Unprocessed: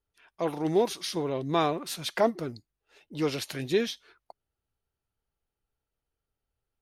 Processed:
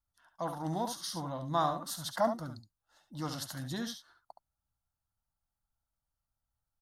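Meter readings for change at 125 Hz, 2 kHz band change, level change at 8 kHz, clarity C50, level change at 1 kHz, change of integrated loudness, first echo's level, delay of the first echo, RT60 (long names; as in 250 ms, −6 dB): −3.0 dB, −8.5 dB, −2.0 dB, no reverb audible, −2.0 dB, −6.5 dB, −8.5 dB, 70 ms, no reverb audible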